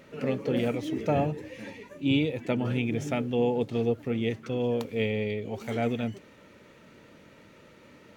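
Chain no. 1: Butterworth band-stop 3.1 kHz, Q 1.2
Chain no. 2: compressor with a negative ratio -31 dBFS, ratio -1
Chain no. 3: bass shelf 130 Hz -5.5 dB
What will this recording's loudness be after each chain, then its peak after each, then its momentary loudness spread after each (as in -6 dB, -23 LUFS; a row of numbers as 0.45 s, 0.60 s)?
-29.5 LUFS, -32.5 LUFS, -30.0 LUFS; -14.5 dBFS, -16.5 dBFS, -13.0 dBFS; 8 LU, 20 LU, 8 LU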